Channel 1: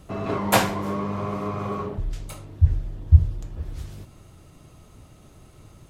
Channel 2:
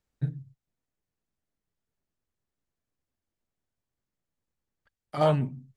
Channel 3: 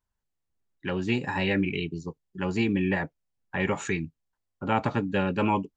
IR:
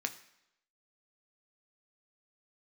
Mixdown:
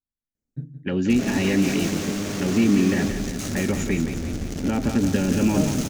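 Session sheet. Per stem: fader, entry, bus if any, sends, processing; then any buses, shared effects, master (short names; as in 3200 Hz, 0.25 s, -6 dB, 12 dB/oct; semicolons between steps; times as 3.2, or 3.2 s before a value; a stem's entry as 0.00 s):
-1.5 dB, 1.10 s, bus A, no send, echo send -5.5 dB, infinite clipping; flange 1.6 Hz, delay 8.3 ms, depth 3.6 ms, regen -66%
-5.0 dB, 0.35 s, no bus, no send, echo send -11.5 dB, bell 4200 Hz -11 dB 2.9 oct
+2.5 dB, 0.00 s, bus A, no send, echo send -11.5 dB, gate -34 dBFS, range -16 dB; low-pass opened by the level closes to 2200 Hz, open at -23.5 dBFS
bus A: 0.0 dB, high shelf 5600 Hz -7 dB; limiter -15.5 dBFS, peak gain reduction 6.5 dB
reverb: off
echo: feedback echo 0.173 s, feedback 52%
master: fifteen-band EQ 250 Hz +11 dB, 1000 Hz -10 dB, 6300 Hz +10 dB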